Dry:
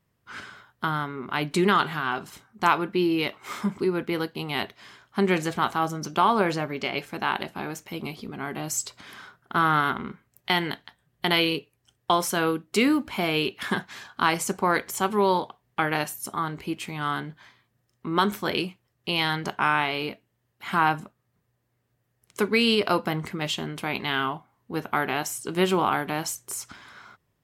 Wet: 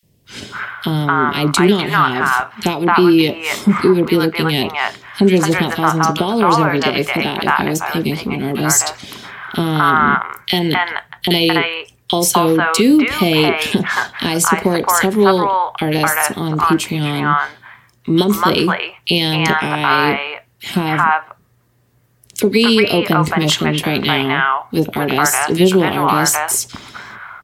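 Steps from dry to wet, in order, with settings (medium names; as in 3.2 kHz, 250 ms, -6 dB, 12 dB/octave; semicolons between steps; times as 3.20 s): compression 2.5:1, threshold -24 dBFS, peak gain reduction 7 dB; three bands offset in time highs, lows, mids 30/250 ms, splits 660/2500 Hz; loudness maximiser +17.5 dB; trim -1 dB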